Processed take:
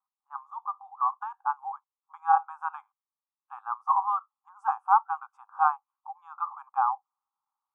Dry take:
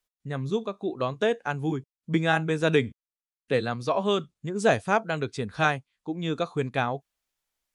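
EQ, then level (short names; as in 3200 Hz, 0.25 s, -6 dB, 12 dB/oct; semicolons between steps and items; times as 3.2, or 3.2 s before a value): brick-wall FIR high-pass 760 Hz; elliptic low-pass 1200 Hz, stop band 40 dB; +8.5 dB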